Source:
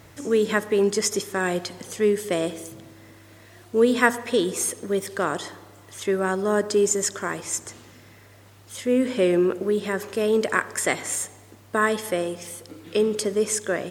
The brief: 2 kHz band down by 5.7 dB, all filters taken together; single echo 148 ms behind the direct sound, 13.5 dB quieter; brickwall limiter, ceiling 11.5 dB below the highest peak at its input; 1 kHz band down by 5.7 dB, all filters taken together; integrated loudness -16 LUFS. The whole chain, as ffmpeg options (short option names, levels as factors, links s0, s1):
-af "equalizer=f=1000:t=o:g=-6,equalizer=f=2000:t=o:g=-5,alimiter=limit=0.126:level=0:latency=1,aecho=1:1:148:0.211,volume=4.22"